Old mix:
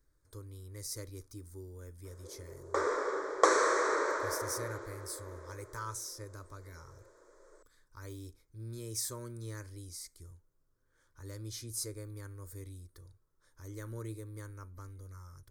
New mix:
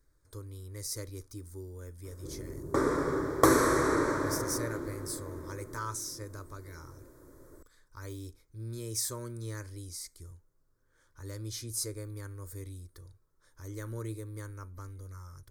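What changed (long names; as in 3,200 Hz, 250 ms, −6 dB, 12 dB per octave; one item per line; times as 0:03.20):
speech +3.5 dB
background: remove elliptic band-pass filter 450–7,300 Hz, stop band 40 dB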